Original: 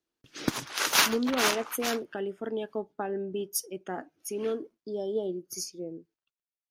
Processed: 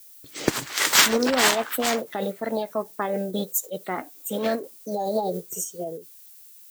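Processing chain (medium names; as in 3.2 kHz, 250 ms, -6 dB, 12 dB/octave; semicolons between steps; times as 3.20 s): added noise violet -54 dBFS; formant shift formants +4 st; trim +6 dB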